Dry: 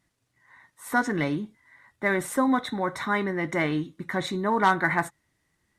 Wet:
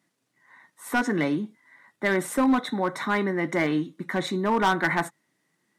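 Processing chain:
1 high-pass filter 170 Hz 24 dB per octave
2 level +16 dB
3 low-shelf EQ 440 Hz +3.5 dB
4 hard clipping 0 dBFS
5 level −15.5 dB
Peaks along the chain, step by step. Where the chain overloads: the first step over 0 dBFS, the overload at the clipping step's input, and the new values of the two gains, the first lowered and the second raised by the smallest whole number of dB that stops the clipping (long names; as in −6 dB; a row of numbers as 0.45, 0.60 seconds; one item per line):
−7.5, +8.5, +9.0, 0.0, −15.5 dBFS
step 2, 9.0 dB
step 2 +7 dB, step 5 −6.5 dB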